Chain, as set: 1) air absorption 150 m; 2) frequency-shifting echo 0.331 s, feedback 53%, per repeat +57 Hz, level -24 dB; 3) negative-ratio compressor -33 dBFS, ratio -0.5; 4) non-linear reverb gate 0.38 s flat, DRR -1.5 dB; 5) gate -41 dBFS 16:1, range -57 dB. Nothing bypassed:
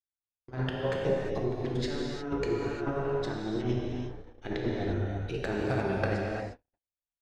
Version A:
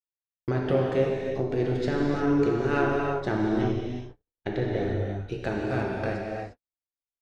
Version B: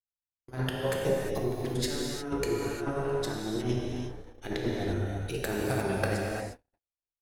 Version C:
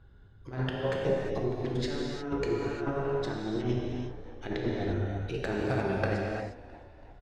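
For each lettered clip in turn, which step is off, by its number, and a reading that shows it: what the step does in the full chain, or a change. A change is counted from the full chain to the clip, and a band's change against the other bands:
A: 3, momentary loudness spread change +4 LU; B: 1, 4 kHz band +4.0 dB; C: 5, momentary loudness spread change +4 LU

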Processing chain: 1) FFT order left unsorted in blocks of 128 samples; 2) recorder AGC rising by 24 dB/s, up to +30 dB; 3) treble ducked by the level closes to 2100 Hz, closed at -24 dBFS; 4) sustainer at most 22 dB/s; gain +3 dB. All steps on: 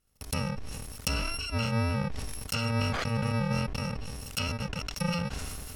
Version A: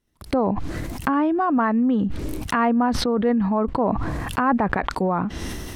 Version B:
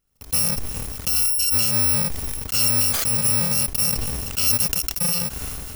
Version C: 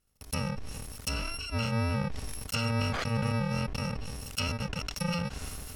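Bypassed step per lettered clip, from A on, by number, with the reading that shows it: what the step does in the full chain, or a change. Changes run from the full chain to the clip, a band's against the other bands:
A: 1, 1 kHz band +12.0 dB; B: 3, 8 kHz band +19.5 dB; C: 2, crest factor change -3.5 dB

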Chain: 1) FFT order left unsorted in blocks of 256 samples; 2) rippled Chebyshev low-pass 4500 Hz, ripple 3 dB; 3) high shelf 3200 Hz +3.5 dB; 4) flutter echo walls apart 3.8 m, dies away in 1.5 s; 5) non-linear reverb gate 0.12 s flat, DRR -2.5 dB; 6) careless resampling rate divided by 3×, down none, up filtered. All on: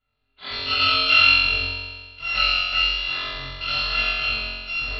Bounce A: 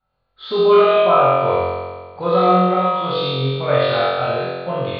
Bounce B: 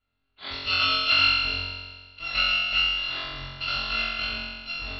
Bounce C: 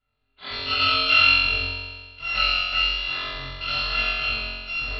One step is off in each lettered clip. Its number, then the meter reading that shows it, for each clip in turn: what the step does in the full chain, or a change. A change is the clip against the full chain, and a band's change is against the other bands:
1, 2 kHz band -22.5 dB; 5, loudness change -4.5 LU; 3, 4 kHz band -1.5 dB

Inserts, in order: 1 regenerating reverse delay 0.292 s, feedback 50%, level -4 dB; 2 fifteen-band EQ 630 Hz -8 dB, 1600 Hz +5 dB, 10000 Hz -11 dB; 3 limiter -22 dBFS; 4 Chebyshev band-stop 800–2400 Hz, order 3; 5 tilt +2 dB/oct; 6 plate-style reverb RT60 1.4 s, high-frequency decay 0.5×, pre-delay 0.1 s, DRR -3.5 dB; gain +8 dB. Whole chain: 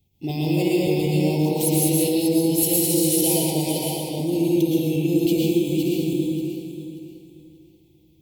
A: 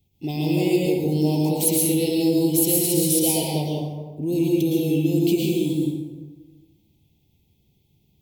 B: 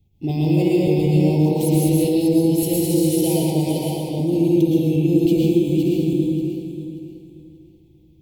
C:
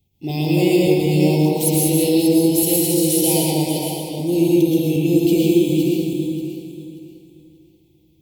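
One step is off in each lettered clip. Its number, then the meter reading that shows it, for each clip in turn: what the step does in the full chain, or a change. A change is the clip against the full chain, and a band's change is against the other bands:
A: 1, momentary loudness spread change +1 LU; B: 5, 8 kHz band -8.0 dB; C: 3, mean gain reduction 2.5 dB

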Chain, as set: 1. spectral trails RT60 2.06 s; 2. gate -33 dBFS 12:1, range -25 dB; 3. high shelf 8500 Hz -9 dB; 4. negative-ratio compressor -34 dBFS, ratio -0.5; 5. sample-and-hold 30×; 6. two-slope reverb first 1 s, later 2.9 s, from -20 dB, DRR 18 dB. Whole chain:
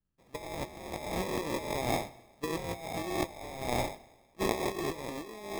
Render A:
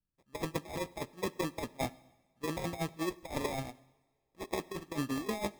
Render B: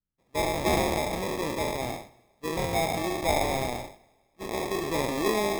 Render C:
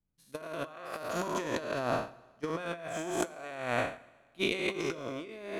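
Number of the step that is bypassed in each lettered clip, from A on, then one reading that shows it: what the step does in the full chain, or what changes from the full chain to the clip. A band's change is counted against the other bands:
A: 1, 250 Hz band +3.0 dB; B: 4, crest factor change -3.5 dB; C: 5, crest factor change +2.0 dB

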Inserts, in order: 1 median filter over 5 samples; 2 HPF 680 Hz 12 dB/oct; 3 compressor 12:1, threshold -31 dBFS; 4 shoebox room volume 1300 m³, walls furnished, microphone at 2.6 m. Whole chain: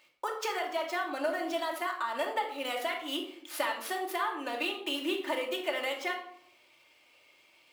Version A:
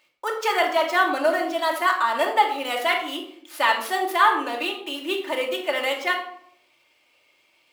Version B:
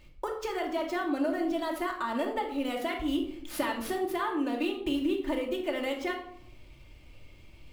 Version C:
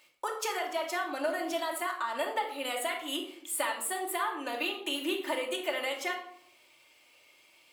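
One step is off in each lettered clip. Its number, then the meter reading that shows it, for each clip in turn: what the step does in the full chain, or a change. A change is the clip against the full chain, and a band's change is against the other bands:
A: 3, mean gain reduction 8.5 dB; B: 2, crest factor change -3.0 dB; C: 1, 8 kHz band +8.0 dB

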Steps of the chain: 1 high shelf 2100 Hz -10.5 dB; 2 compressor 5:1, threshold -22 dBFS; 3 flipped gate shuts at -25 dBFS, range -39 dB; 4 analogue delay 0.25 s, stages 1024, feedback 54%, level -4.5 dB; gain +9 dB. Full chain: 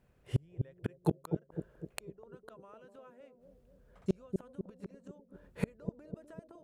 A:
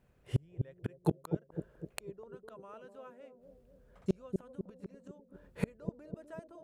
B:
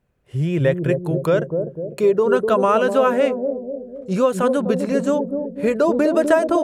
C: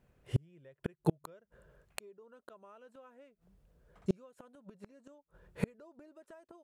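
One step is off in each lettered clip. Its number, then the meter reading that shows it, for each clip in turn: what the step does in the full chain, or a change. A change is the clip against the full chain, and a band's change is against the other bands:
2, mean gain reduction 2.0 dB; 3, momentary loudness spread change -10 LU; 4, echo-to-direct -12.0 dB to none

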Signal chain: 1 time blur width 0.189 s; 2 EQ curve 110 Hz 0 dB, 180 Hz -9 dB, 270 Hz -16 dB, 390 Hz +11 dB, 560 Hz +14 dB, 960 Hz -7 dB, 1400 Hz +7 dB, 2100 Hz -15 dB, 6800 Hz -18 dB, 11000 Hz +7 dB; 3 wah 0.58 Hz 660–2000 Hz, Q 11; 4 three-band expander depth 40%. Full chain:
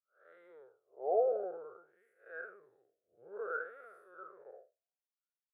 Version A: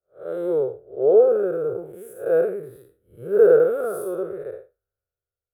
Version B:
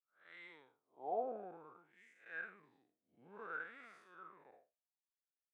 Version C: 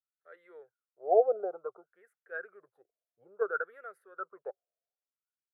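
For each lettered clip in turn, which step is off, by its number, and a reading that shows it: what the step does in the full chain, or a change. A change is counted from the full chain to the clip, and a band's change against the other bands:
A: 3, 250 Hz band +19.5 dB; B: 2, 500 Hz band -10.0 dB; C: 1, 1 kHz band +1.5 dB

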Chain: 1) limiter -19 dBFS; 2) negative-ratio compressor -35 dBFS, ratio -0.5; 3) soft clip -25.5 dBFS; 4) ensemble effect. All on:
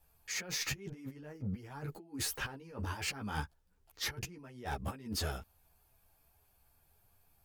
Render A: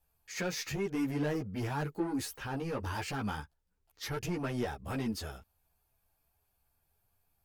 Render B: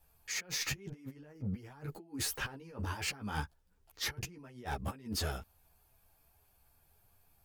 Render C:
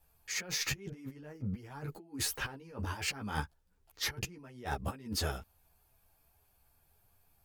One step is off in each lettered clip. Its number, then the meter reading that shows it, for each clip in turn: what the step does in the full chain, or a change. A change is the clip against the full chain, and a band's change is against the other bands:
2, crest factor change -4.0 dB; 1, momentary loudness spread change +1 LU; 3, distortion -15 dB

